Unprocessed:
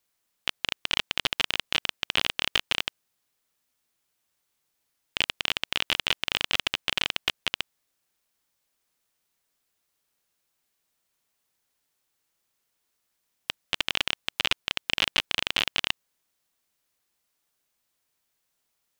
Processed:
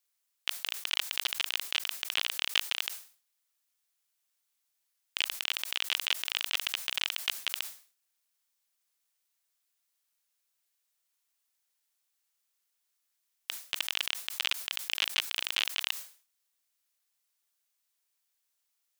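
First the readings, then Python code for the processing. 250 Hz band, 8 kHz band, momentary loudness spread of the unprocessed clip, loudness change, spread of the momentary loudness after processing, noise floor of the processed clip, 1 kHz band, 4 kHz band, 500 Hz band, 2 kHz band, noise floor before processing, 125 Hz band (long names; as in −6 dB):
below −15 dB, +1.0 dB, 8 LU, −4.0 dB, 8 LU, −80 dBFS, −8.0 dB, −4.0 dB, −12.0 dB, −5.0 dB, −78 dBFS, below −20 dB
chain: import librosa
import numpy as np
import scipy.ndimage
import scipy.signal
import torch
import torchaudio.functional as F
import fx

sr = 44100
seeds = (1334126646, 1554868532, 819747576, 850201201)

y = fx.highpass(x, sr, hz=970.0, slope=6)
y = fx.high_shelf(y, sr, hz=3800.0, db=5.0)
y = fx.sustainer(y, sr, db_per_s=140.0)
y = F.gain(torch.from_numpy(y), -6.5).numpy()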